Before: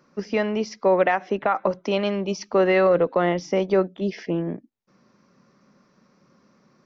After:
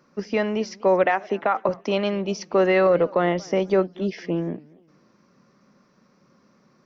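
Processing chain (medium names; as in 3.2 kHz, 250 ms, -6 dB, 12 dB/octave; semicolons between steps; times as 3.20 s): 1.04–1.69 s: high-pass 180 Hz; modulated delay 235 ms, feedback 31%, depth 212 cents, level -24 dB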